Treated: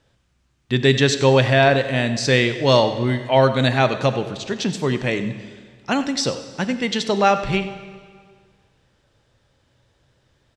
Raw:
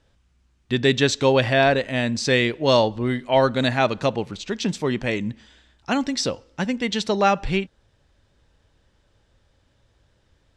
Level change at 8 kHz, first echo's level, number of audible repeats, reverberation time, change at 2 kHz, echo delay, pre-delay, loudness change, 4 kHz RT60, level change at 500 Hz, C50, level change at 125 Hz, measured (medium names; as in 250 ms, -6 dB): +2.5 dB, -15.5 dB, 1, 1.8 s, +2.5 dB, 94 ms, 11 ms, +2.5 dB, 1.7 s, +2.5 dB, 10.0 dB, +6.0 dB